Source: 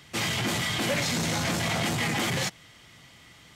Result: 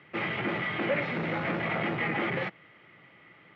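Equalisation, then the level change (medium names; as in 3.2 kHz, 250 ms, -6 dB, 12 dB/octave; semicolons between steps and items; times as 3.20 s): distance through air 68 m; cabinet simulation 250–2100 Hz, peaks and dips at 250 Hz -8 dB, 460 Hz -3 dB, 710 Hz -7 dB, 1 kHz -8 dB, 1.6 kHz -6 dB; +5.0 dB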